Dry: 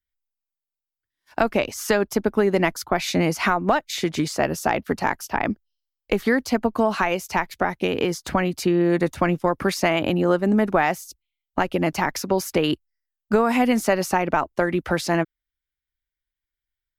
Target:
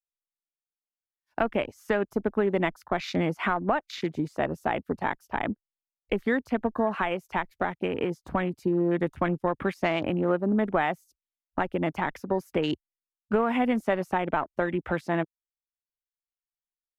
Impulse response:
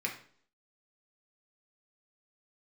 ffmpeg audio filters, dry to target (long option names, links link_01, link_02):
-af "adynamicequalizer=threshold=0.00708:dfrequency=5600:dqfactor=0.87:tfrequency=5600:tqfactor=0.87:attack=5:release=100:ratio=0.375:range=2:mode=cutabove:tftype=bell,afwtdn=0.0224,volume=-5.5dB"